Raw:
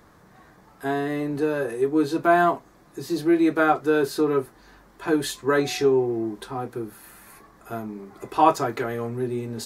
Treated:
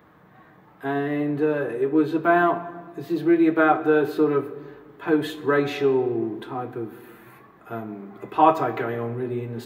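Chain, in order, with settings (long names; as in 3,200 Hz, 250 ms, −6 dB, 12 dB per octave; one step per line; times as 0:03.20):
high-pass filter 94 Hz
flat-topped bell 7,300 Hz −15 dB
convolution reverb RT60 1.4 s, pre-delay 6 ms, DRR 10 dB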